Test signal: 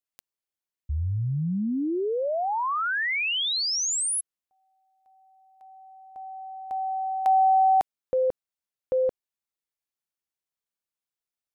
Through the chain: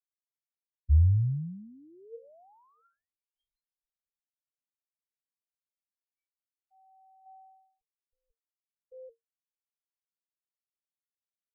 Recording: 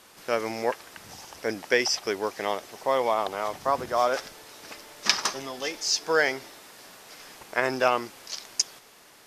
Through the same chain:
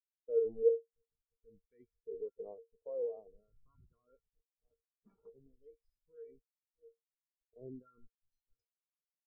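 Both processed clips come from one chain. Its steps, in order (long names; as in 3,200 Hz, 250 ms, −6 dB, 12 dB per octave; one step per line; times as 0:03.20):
on a send: feedback echo with a low-pass in the loop 652 ms, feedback 37%, low-pass 2,000 Hz, level −21 dB
on the sum: bit-depth reduction 6 bits, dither none
tuned comb filter 460 Hz, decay 0.35 s, harmonics odd, mix 90%
treble cut that deepens with the level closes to 2,300 Hz, closed at −41 dBFS
in parallel at 0 dB: compressor whose output falls as the input rises −44 dBFS, ratio −0.5
on the sum: low-shelf EQ 410 Hz −2.5 dB
all-pass phaser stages 2, 0.46 Hz, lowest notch 560–4,400 Hz
spectral tilt −4.5 dB per octave
every bin expanded away from the loudest bin 2.5 to 1
level +3.5 dB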